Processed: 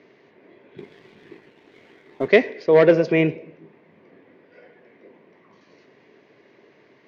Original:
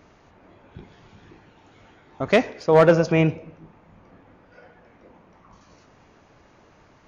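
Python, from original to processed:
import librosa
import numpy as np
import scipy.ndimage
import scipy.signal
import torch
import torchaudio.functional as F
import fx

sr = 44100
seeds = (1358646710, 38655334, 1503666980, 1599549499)

y = fx.cabinet(x, sr, low_hz=150.0, low_slope=24, high_hz=4700.0, hz=(180.0, 400.0, 820.0, 1300.0, 2000.0), db=(-5, 9, -8, -10, 7))
y = fx.leveller(y, sr, passes=1, at=(0.78, 2.28))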